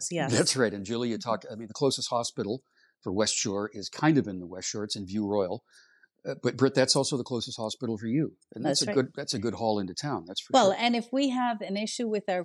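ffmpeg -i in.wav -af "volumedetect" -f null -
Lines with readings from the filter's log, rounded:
mean_volume: -28.8 dB
max_volume: -9.5 dB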